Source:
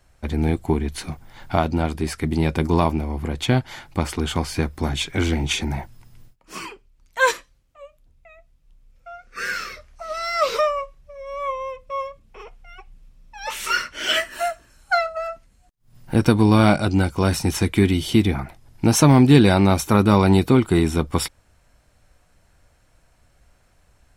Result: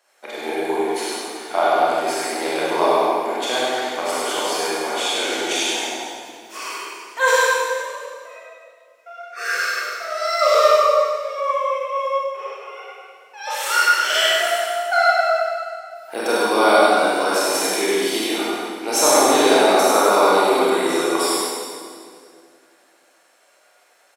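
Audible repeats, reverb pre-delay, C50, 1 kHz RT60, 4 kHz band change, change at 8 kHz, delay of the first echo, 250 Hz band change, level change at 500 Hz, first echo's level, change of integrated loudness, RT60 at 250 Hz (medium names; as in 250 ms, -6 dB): 1, 26 ms, -5.5 dB, 1.9 s, +6.0 dB, +7.5 dB, 99 ms, -7.0 dB, +6.0 dB, -3.0 dB, +2.0 dB, 2.6 s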